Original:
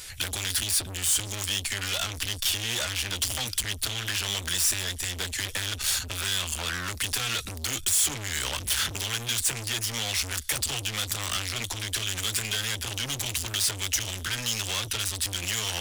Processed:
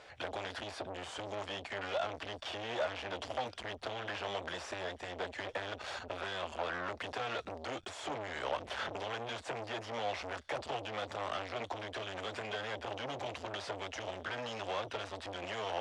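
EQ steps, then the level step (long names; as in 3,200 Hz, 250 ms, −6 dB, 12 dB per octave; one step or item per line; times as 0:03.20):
resonant band-pass 640 Hz, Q 2
high-frequency loss of the air 89 metres
+6.5 dB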